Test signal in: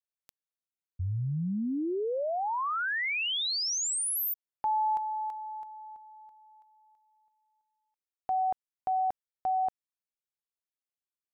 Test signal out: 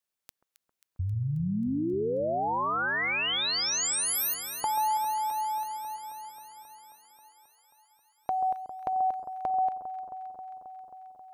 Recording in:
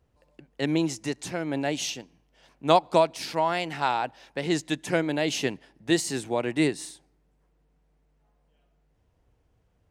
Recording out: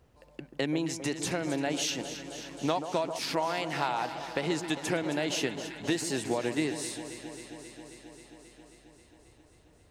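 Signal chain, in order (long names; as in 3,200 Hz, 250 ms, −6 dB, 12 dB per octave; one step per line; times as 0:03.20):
low-shelf EQ 120 Hz −4.5 dB
downward compressor 5 to 1, threshold −36 dBFS
on a send: delay that swaps between a low-pass and a high-pass 134 ms, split 1,300 Hz, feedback 87%, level −10 dB
on the sum: level +7.5 dB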